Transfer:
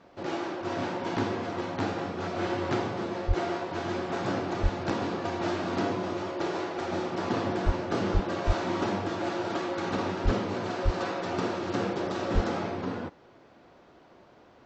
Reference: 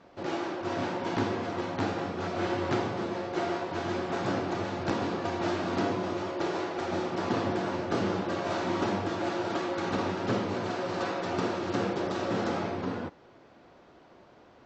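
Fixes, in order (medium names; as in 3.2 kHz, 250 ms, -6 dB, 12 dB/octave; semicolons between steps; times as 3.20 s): de-plosive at 3.27/4.62/7.65/8.13/8.46/10.24/10.84/12.34 s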